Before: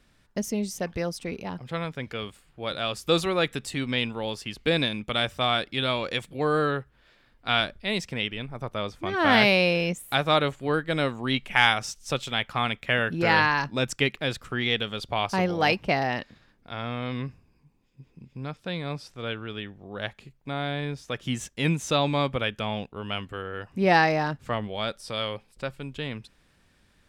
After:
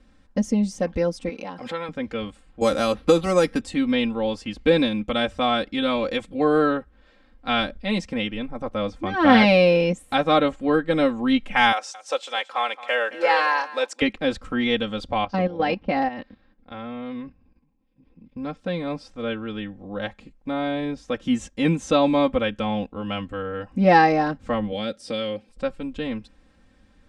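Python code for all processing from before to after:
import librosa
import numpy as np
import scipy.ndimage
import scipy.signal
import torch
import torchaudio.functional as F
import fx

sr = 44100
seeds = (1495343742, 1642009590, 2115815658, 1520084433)

y = fx.chain(x, sr, fx.resample_bad(factor=2, down='none', up='hold'),
    fx.highpass(hz=730.0, slope=6),
    fx.pre_swell(db_per_s=69.0), at=(1.29, 1.89))
y = fx.chain(y, sr, fx.resample_bad(factor=6, down='filtered', up='hold'),
    fx.band_squash(depth_pct=100), at=(2.61, 3.61))
y = fx.chain(y, sr, fx.block_float(bits=7),
    fx.highpass(hz=480.0, slope=24),
    fx.echo_single(ms=220, db=-17.0), at=(11.72, 14.02))
y = fx.chain(y, sr, fx.lowpass(hz=4600.0, slope=24),
    fx.level_steps(step_db=13), at=(15.18, 18.37))
y = fx.chain(y, sr, fx.highpass(hz=110.0, slope=12),
    fx.peak_eq(hz=990.0, db=-10.5, octaves=0.97),
    fx.band_squash(depth_pct=70), at=(24.72, 25.49))
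y = scipy.signal.sosfilt(scipy.signal.butter(4, 9300.0, 'lowpass', fs=sr, output='sos'), y)
y = fx.tilt_shelf(y, sr, db=5.0, hz=1200.0)
y = y + 0.88 * np.pad(y, (int(3.8 * sr / 1000.0), 0))[:len(y)]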